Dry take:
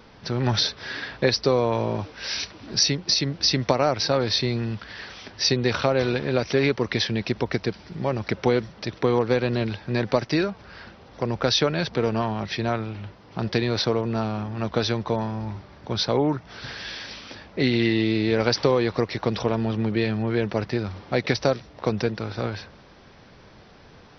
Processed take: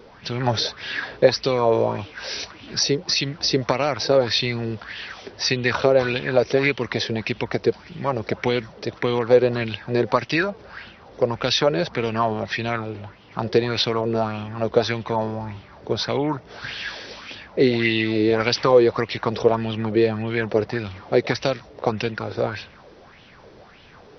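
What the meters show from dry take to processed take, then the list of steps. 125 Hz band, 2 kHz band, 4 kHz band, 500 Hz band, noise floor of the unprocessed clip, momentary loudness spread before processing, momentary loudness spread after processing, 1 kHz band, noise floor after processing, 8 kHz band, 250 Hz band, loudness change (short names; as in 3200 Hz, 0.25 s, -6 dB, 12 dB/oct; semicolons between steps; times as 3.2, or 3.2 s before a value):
-1.5 dB, +4.0 dB, +0.5 dB, +4.0 dB, -50 dBFS, 12 LU, 13 LU, +3.5 dB, -48 dBFS, n/a, +0.5 dB, +2.0 dB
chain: LFO bell 1.7 Hz 400–3100 Hz +13 dB; gain -1.5 dB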